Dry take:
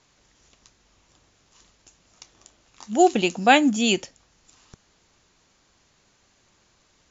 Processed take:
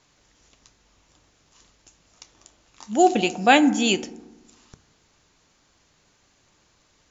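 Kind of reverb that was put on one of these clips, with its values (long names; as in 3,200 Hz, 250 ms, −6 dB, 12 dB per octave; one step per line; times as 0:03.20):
feedback delay network reverb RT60 1.1 s, low-frequency decay 1.2×, high-frequency decay 0.35×, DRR 13 dB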